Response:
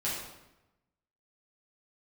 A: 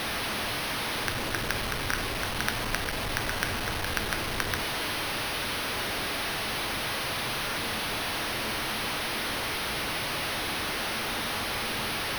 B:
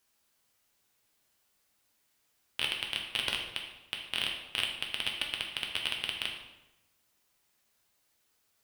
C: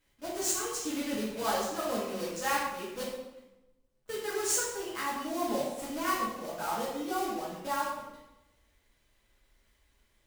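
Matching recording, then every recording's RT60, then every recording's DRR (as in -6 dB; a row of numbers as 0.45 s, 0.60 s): C; 0.95 s, 0.95 s, 0.95 s; 7.5 dB, 0.5 dB, -8.5 dB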